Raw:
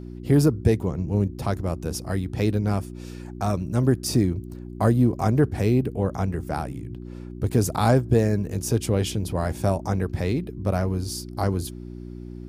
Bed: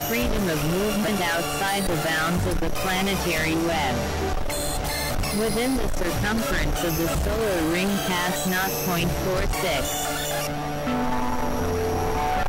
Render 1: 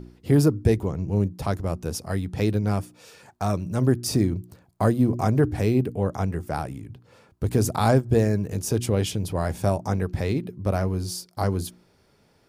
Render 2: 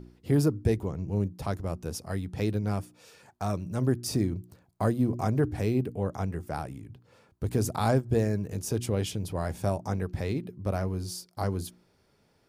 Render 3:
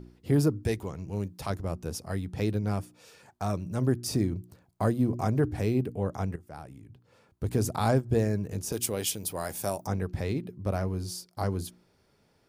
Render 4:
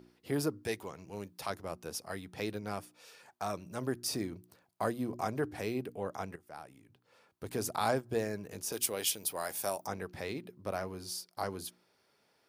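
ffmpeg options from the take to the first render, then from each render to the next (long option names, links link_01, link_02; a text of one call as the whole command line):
ffmpeg -i in.wav -af "bandreject=frequency=60:width_type=h:width=4,bandreject=frequency=120:width_type=h:width=4,bandreject=frequency=180:width_type=h:width=4,bandreject=frequency=240:width_type=h:width=4,bandreject=frequency=300:width_type=h:width=4,bandreject=frequency=360:width_type=h:width=4" out.wav
ffmpeg -i in.wav -af "volume=-5.5dB" out.wav
ffmpeg -i in.wav -filter_complex "[0:a]asettb=1/sr,asplit=3[link_01][link_02][link_03];[link_01]atrim=end=0.634[link_04];[link_02]atrim=start=0.63:end=1.5,asetpts=PTS-STARTPTS,afade=type=in:duration=0.004:curve=qsin,afade=type=out:start_time=0.866:duration=0.004:curve=qsin,tiltshelf=frequency=890:gain=-5[link_05];[link_03]atrim=start=1.496[link_06];[link_04][link_05]acrossfade=duration=0.004:curve1=hsin:curve2=qsin[link_07];[link_07][link_06]acrossfade=duration=0.004:curve1=qsin:curve2=hsin,asettb=1/sr,asplit=3[link_08][link_09][link_10];[link_08]atrim=end=8.724[link_11];[link_09]atrim=start=8.72:end=9.87,asetpts=PTS-STARTPTS,afade=type=in:duration=0.004:curve=qsin,afade=type=out:start_time=1.146:duration=0.004:curve=qsin,aemphasis=mode=production:type=bsi[link_12];[link_10]atrim=start=9.866[link_13];[link_11][link_12]acrossfade=duration=0.004:curve1=hsin:curve2=qsin[link_14];[link_14][link_13]acrossfade=duration=0.004:curve1=qsin:curve2=hsin,asplit=2[link_15][link_16];[link_15]atrim=end=6.36,asetpts=PTS-STARTPTS,afade=type=out:start_time=6.356:duration=0.004:curve=hsin:silence=0.188365[link_17];[link_16]atrim=start=6.36,asetpts=PTS-STARTPTS,afade=type=in:duration=1.13:silence=0.188365[link_18];[link_17][link_18]concat=n=2:v=0:a=1" out.wav
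ffmpeg -i in.wav -af "highpass=frequency=710:poles=1,equalizer=frequency=7300:width_type=o:width=0.52:gain=-3.5" out.wav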